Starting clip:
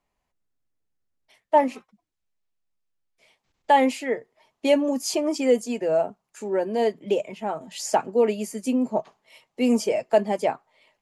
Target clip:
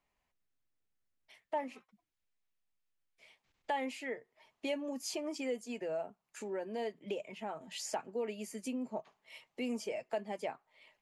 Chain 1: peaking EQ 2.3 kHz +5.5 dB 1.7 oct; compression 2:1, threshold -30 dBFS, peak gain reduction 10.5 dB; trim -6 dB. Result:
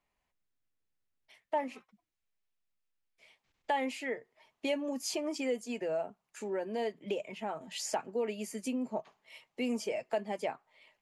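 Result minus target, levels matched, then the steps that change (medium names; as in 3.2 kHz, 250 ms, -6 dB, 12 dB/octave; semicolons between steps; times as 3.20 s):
compression: peak gain reduction -4 dB
change: compression 2:1, threshold -37.5 dBFS, peak gain reduction 14.5 dB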